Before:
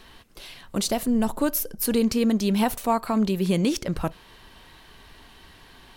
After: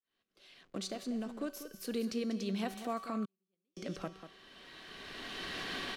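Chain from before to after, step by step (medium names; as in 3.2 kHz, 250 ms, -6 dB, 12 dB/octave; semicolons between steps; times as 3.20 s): fade-in on the opening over 1.89 s; recorder AGC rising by 17 dB/s; feedback comb 190 Hz, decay 1.4 s, mix 70%; delay 192 ms -11 dB; 0.63–1.50 s: hysteresis with a dead band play -48 dBFS; peaking EQ 910 Hz -12.5 dB 0.24 oct; 3.25–3.77 s: gate -22 dBFS, range -52 dB; three-band isolator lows -17 dB, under 170 Hz, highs -14 dB, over 7.3 kHz; trim -2.5 dB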